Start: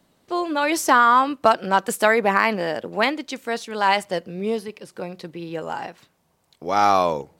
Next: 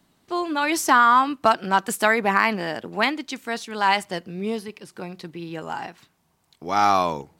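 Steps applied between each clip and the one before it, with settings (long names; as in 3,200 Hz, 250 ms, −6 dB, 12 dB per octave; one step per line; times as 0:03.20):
parametric band 530 Hz −8.5 dB 0.51 octaves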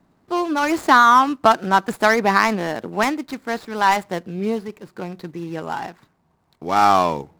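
running median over 15 samples
level +4.5 dB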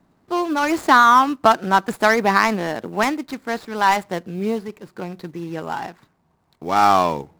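floating-point word with a short mantissa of 4 bits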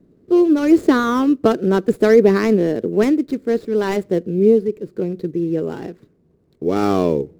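low shelf with overshoot 610 Hz +11.5 dB, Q 3
level −6 dB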